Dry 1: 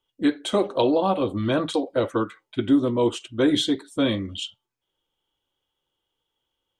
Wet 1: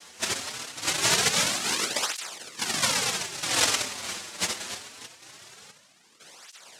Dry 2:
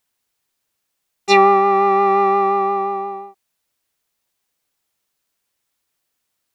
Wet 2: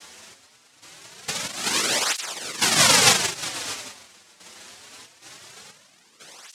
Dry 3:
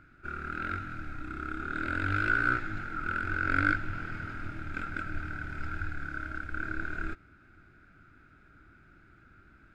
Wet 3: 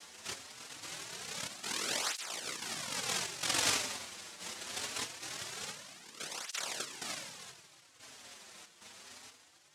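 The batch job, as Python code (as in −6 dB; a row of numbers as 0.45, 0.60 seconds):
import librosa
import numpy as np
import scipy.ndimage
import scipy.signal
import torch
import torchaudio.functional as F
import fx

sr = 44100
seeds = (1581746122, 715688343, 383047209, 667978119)

p1 = fx.quant_dither(x, sr, seeds[0], bits=6, dither='triangular')
p2 = x + F.gain(torch.from_numpy(p1), -6.5).numpy()
p3 = fx.small_body(p2, sr, hz=(450.0, 1200.0, 3300.0), ring_ms=70, db=15)
p4 = fx.dereverb_blind(p3, sr, rt60_s=0.65)
p5 = fx.high_shelf(p4, sr, hz=4100.0, db=-6.0)
p6 = fx.over_compress(p5, sr, threshold_db=-19.0, ratio=-1.0)
p7 = p6 + fx.echo_multitap(p6, sr, ms=(68, 183, 219, 621), db=(-8.0, -13.5, -18.0, -15.5), dry=0)
p8 = fx.step_gate(p7, sr, bpm=92, pattern='xx...xxxx.x', floor_db=-12.0, edge_ms=4.5)
p9 = fx.room_shoebox(p8, sr, seeds[1], volume_m3=2900.0, walls='mixed', distance_m=1.2)
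p10 = fx.noise_vocoder(p9, sr, seeds[2], bands=1)
p11 = fx.flanger_cancel(p10, sr, hz=0.23, depth_ms=7.7)
y = F.gain(torch.from_numpy(p11), -4.5).numpy()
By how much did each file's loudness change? −2.0, −4.5, −3.5 LU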